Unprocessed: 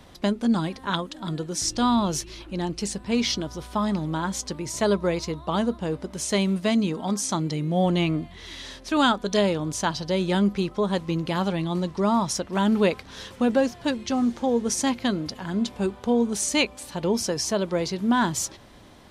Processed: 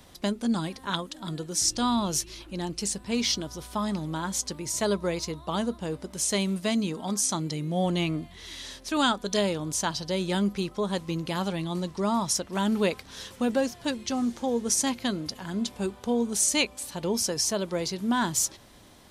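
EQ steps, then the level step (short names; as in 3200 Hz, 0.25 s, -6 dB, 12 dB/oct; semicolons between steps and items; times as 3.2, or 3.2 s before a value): high shelf 5500 Hz +11.5 dB; -4.5 dB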